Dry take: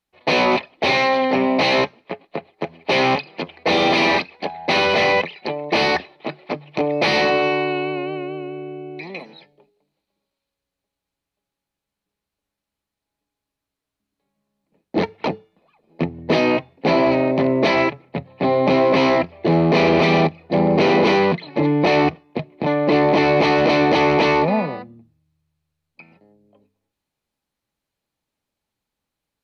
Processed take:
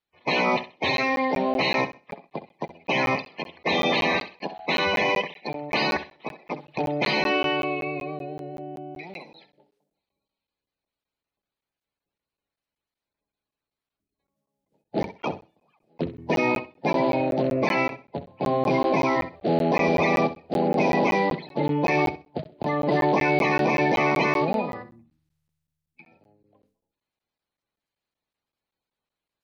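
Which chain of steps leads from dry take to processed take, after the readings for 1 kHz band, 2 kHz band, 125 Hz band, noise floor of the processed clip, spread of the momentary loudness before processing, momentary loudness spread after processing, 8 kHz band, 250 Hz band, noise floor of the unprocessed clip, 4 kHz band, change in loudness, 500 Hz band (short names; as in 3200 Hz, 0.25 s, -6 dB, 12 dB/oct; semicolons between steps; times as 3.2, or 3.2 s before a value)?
-5.0 dB, -4.5 dB, -6.5 dB, under -85 dBFS, 16 LU, 15 LU, n/a, -6.5 dB, -84 dBFS, -6.5 dB, -6.0 dB, -7.0 dB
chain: bin magnitudes rounded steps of 30 dB; flutter echo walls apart 11.1 m, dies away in 0.29 s; crackling interface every 0.19 s, samples 512, zero, from 0.97; gain -5.5 dB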